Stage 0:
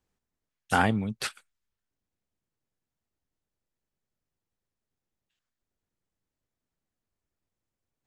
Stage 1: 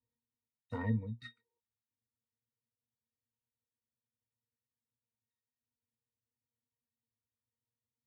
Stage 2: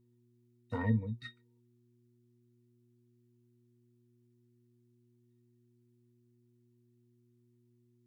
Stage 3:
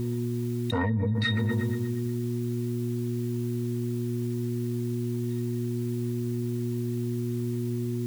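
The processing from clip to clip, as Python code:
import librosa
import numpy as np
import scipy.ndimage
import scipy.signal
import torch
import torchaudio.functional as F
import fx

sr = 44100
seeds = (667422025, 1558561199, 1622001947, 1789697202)

y1 = fx.octave_resonator(x, sr, note='A#', decay_s=0.13)
y1 = fx.spec_repair(y1, sr, seeds[0], start_s=1.2, length_s=0.37, low_hz=330.0, high_hz=1200.0, source='before')
y2 = fx.dmg_buzz(y1, sr, base_hz=120.0, harmonics=3, level_db=-72.0, tilt_db=-3, odd_only=False)
y2 = y2 * librosa.db_to_amplitude(3.0)
y3 = fx.echo_wet_lowpass(y2, sr, ms=120, feedback_pct=52, hz=1700.0, wet_db=-18.0)
y3 = fx.env_flatten(y3, sr, amount_pct=100)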